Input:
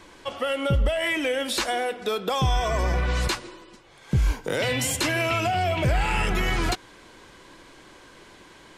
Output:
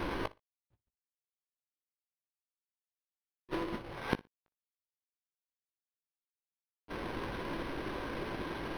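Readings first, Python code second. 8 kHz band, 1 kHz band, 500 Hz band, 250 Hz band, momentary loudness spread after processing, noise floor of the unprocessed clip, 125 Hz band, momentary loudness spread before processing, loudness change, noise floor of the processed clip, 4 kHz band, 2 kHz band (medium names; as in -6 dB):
-30.0 dB, -16.0 dB, -16.0 dB, -11.0 dB, 4 LU, -50 dBFS, -21.5 dB, 5 LU, -14.5 dB, under -85 dBFS, -20.5 dB, -17.0 dB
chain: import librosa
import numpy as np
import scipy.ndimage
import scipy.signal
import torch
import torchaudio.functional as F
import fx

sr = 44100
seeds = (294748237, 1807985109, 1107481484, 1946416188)

p1 = fx.halfwave_hold(x, sr)
p2 = fx.rider(p1, sr, range_db=5, speed_s=2.0)
p3 = fx.gate_flip(p2, sr, shuts_db=-30.0, range_db=-42)
p4 = np.sign(p3) * np.maximum(np.abs(p3) - 10.0 ** (-55.5 / 20.0), 0.0)
p5 = fx.doubler(p4, sr, ms=18.0, db=-11.0)
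p6 = p5 + fx.echo_feedback(p5, sr, ms=60, feedback_pct=18, wet_db=-21.0, dry=0)
p7 = np.interp(np.arange(len(p6)), np.arange(len(p6))[::6], p6[::6])
y = p7 * 10.0 ** (7.0 / 20.0)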